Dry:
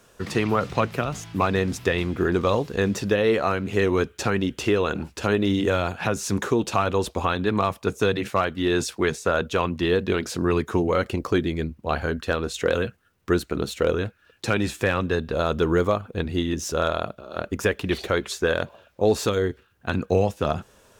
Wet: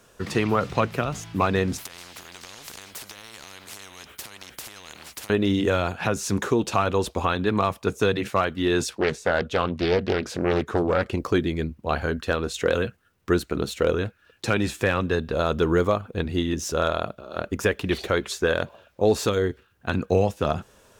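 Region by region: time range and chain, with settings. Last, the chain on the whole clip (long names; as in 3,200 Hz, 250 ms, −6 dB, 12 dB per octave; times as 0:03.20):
0:01.78–0:05.30: downward compressor 10 to 1, threshold −29 dBFS + every bin compressed towards the loudest bin 10 to 1
0:08.89–0:11.13: high-shelf EQ 6,200 Hz −8 dB + highs frequency-modulated by the lows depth 0.69 ms
whole clip: no processing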